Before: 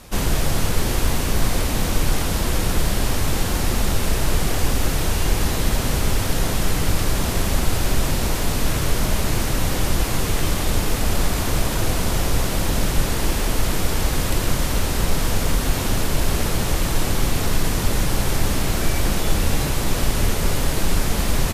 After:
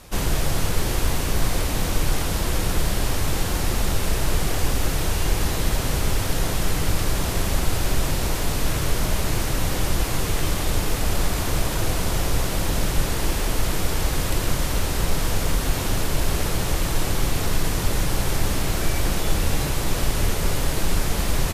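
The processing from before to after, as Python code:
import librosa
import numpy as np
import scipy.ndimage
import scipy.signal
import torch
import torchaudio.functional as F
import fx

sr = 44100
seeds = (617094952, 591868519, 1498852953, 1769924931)

y = fx.peak_eq(x, sr, hz=230.0, db=-5.5, octaves=0.23)
y = y * librosa.db_to_amplitude(-2.0)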